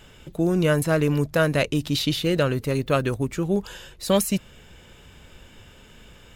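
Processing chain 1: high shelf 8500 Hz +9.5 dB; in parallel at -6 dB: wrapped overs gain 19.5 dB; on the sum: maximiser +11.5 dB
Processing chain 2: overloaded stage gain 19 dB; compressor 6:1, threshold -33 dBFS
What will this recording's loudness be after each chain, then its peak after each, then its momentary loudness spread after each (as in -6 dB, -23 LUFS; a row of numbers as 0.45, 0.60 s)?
-11.5, -36.0 LUFS; -1.0, -23.0 dBFS; 5, 15 LU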